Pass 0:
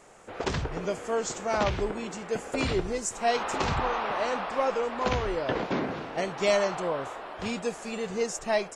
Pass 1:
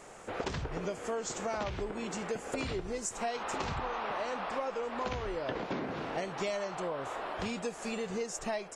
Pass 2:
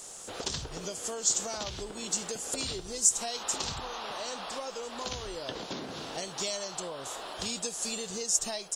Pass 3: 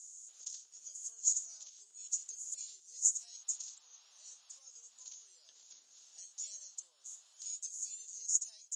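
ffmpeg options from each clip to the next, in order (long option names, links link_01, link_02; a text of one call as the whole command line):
ffmpeg -i in.wav -af "acompressor=threshold=-36dB:ratio=6,volume=3dB" out.wav
ffmpeg -i in.wav -af "aexciter=amount=5:drive=7.3:freq=3200,volume=-3.5dB" out.wav
ffmpeg -i in.wav -af "bandpass=frequency=6700:width_type=q:width=11:csg=0" out.wav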